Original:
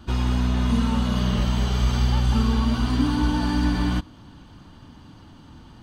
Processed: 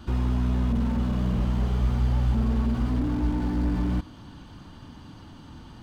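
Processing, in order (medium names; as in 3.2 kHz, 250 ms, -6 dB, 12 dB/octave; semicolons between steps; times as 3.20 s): in parallel at +3 dB: peak limiter -20.5 dBFS, peak gain reduction 10.5 dB; on the sum: slew-rate limiter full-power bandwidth 33 Hz; trim -6.5 dB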